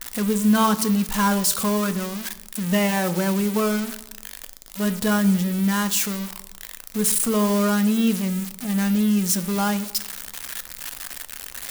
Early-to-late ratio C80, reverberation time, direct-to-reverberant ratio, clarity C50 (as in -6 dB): 18.0 dB, 0.95 s, 11.0 dB, 15.5 dB